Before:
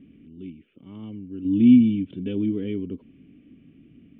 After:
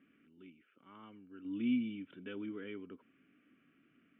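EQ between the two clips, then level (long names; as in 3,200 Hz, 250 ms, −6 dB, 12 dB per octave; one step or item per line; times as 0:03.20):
resonant band-pass 1,400 Hz, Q 4.1
+8.0 dB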